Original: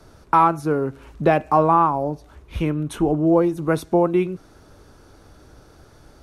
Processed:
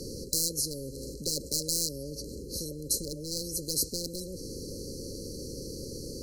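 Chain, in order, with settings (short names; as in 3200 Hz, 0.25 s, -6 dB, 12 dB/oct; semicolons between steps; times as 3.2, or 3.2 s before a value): one-sided fold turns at -12 dBFS; brick-wall FIR band-stop 560–4000 Hz; spectral compressor 10:1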